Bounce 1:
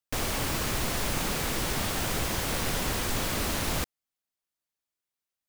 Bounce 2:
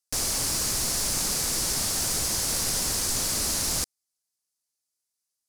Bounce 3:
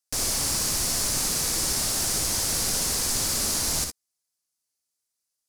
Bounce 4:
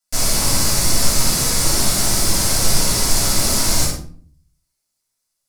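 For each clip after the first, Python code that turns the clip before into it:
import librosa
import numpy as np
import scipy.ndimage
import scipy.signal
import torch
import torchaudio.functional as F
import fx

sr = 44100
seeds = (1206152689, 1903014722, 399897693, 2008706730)

y1 = fx.band_shelf(x, sr, hz=7200.0, db=14.0, octaves=1.7)
y1 = y1 * librosa.db_to_amplitude(-4.0)
y2 = fx.room_early_taps(y1, sr, ms=(61, 74), db=(-5.5, -16.5))
y3 = fx.room_shoebox(y2, sr, seeds[0], volume_m3=460.0, walls='furnished', distance_m=7.1)
y3 = y3 * librosa.db_to_amplitude(-1.5)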